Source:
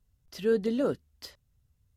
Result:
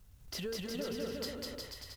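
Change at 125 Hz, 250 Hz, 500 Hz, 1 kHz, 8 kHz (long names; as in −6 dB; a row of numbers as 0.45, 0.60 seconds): −3.0 dB, −9.5 dB, −10.5 dB, −6.0 dB, can't be measured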